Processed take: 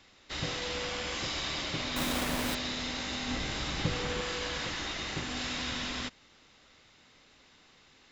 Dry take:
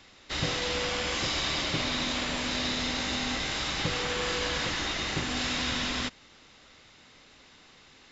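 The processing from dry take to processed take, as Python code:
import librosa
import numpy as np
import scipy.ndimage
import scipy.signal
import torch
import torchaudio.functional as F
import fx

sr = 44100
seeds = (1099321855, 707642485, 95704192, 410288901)

y = fx.halfwave_hold(x, sr, at=(1.96, 2.55))
y = fx.low_shelf(y, sr, hz=400.0, db=7.5, at=(3.28, 4.21))
y = y * librosa.db_to_amplitude(-5.0)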